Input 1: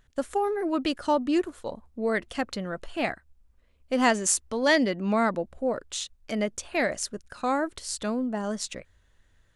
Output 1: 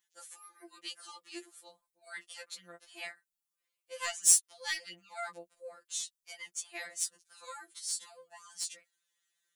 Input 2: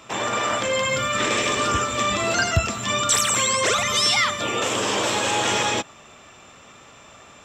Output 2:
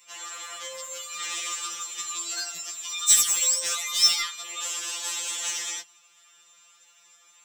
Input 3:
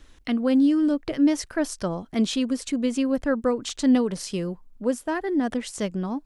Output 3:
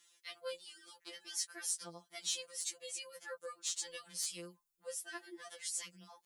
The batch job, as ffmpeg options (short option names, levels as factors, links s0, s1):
-af "aderivative,aeval=exprs='0.501*(cos(1*acos(clip(val(0)/0.501,-1,1)))-cos(1*PI/2))+0.00398*(cos(2*acos(clip(val(0)/0.501,-1,1)))-cos(2*PI/2))+0.0398*(cos(7*acos(clip(val(0)/0.501,-1,1)))-cos(7*PI/2))':c=same,afftfilt=real='re*2.83*eq(mod(b,8),0)':imag='im*2.83*eq(mod(b,8),0)':win_size=2048:overlap=0.75,volume=2.37"